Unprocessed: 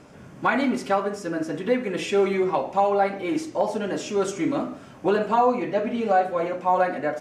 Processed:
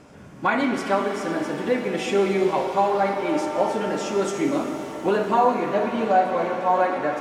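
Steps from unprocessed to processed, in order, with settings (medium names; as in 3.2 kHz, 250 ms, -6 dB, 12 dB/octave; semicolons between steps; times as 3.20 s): pitch-shifted reverb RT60 3.9 s, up +7 st, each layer -8 dB, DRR 5 dB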